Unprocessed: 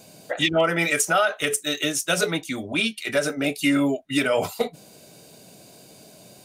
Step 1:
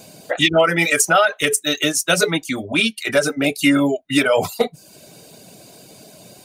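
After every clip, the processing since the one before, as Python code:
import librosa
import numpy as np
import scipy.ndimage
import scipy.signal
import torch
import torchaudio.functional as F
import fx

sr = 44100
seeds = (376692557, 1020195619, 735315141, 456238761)

y = fx.dereverb_blind(x, sr, rt60_s=0.55)
y = y * 10.0 ** (6.0 / 20.0)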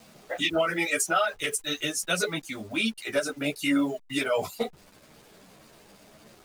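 y = fx.delta_hold(x, sr, step_db=-38.5)
y = fx.ensemble(y, sr)
y = y * 10.0 ** (-7.0 / 20.0)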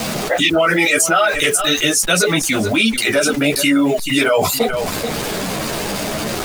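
y = x + 10.0 ** (-20.5 / 20.0) * np.pad(x, (int(433 * sr / 1000.0), 0))[:len(x)]
y = fx.env_flatten(y, sr, amount_pct=70)
y = y * 10.0 ** (8.5 / 20.0)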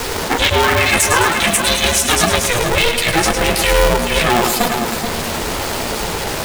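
y = fx.echo_feedback(x, sr, ms=106, feedback_pct=56, wet_db=-7.0)
y = y * np.sign(np.sin(2.0 * np.pi * 240.0 * np.arange(len(y)) / sr))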